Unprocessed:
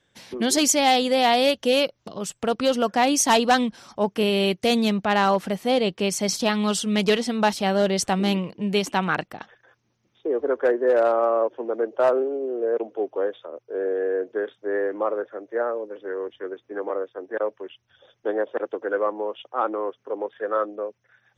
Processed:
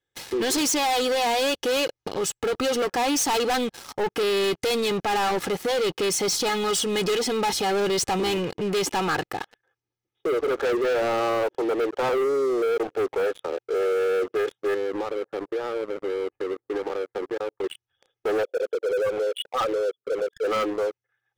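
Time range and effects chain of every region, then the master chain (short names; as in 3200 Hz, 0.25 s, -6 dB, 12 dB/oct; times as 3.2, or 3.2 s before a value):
14.74–17.64 sample sorter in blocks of 8 samples + LPF 1500 Hz 24 dB/oct + compressor, threshold -36 dBFS
18.43–20.45 formant sharpening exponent 3 + HPF 510 Hz 6 dB/oct
whole clip: comb 2.4 ms, depth 69%; sample leveller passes 5; limiter -12 dBFS; gain -8.5 dB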